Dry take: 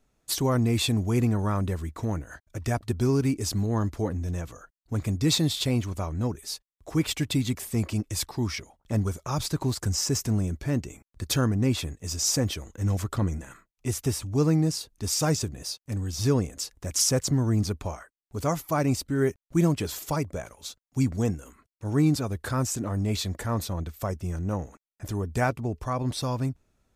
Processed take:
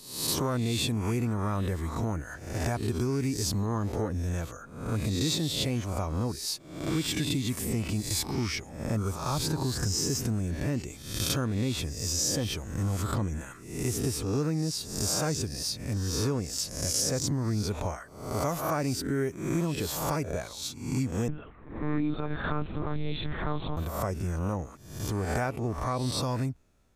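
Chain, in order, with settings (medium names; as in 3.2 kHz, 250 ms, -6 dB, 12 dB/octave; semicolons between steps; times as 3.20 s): reverse spectral sustain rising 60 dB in 0.66 s; compression 4:1, threshold -26 dBFS, peak gain reduction 8.5 dB; 21.28–23.77 s: monotone LPC vocoder at 8 kHz 150 Hz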